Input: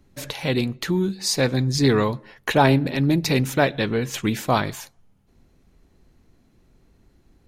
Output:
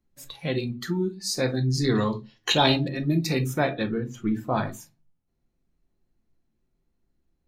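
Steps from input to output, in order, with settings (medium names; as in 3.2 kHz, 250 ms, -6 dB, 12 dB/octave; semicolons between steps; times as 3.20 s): 3.83–4.58 s: treble shelf 2.2 kHz -9.5 dB; simulated room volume 240 m³, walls furnished, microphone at 0.87 m; spectral noise reduction 14 dB; 1.95–2.89 s: high-order bell 4.6 kHz +14.5 dB; trim -6 dB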